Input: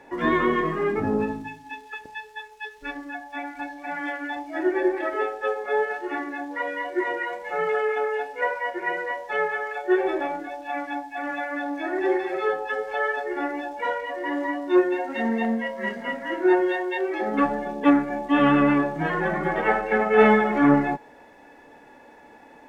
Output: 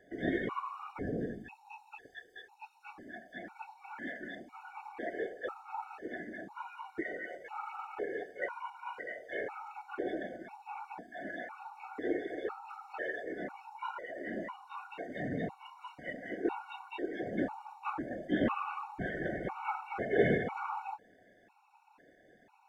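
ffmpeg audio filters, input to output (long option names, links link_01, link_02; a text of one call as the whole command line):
ffmpeg -i in.wav -af "afftfilt=real='hypot(re,im)*cos(2*PI*random(0))':imag='hypot(re,im)*sin(2*PI*random(1))':win_size=512:overlap=0.75,afftfilt=real='re*gt(sin(2*PI*1*pts/sr)*(1-2*mod(floor(b*sr/1024/740),2)),0)':imag='im*gt(sin(2*PI*1*pts/sr)*(1-2*mod(floor(b*sr/1024/740),2)),0)':win_size=1024:overlap=0.75,volume=-5dB" out.wav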